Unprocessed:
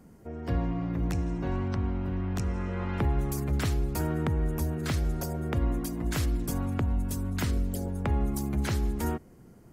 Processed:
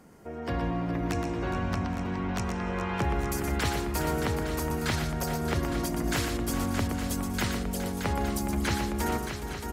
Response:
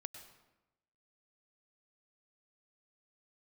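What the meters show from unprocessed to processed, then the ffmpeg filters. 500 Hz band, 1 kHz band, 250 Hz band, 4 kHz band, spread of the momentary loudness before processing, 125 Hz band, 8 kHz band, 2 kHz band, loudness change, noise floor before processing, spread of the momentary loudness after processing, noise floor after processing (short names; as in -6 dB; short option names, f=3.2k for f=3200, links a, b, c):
+3.5 dB, +6.5 dB, +1.5 dB, +7.0 dB, 3 LU, -2.5 dB, +5.0 dB, +7.0 dB, +0.5 dB, -53 dBFS, 3 LU, -37 dBFS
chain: -filter_complex "[0:a]asplit=2[a][b];[b]highpass=f=720:p=1,volume=11dB,asoftclip=type=tanh:threshold=-18dB[c];[a][c]amix=inputs=2:normalize=0,lowpass=f=7k:p=1,volume=-6dB,aecho=1:1:120|415|622|822|861:0.473|0.282|0.447|0.126|0.299"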